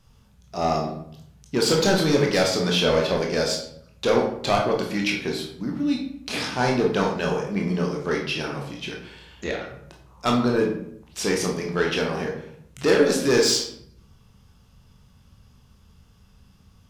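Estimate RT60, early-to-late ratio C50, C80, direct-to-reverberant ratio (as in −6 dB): 0.70 s, 5.0 dB, 8.5 dB, −0.5 dB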